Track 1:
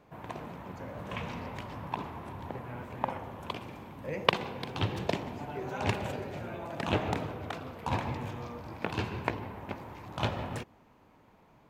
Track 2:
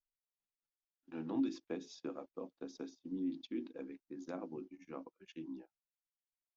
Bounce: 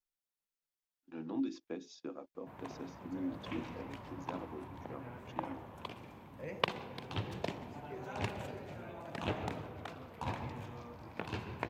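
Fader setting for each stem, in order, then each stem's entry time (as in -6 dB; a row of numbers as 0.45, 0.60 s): -7.5, -1.0 dB; 2.35, 0.00 s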